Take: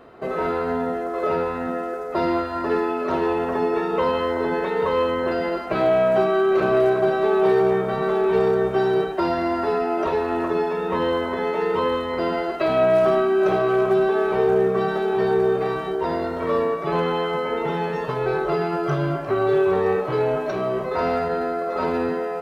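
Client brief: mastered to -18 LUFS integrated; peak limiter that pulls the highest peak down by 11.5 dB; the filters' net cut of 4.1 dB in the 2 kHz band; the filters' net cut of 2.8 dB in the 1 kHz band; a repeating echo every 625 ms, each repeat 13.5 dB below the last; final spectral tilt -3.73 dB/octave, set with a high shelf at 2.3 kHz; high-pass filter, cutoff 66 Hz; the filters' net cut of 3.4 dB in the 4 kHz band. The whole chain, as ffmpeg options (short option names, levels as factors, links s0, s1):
-af "highpass=66,equalizer=f=1000:t=o:g=-3,equalizer=f=2000:t=o:g=-5,highshelf=f=2300:g=4,equalizer=f=4000:t=o:g=-6,alimiter=limit=0.0891:level=0:latency=1,aecho=1:1:625|1250:0.211|0.0444,volume=3.35"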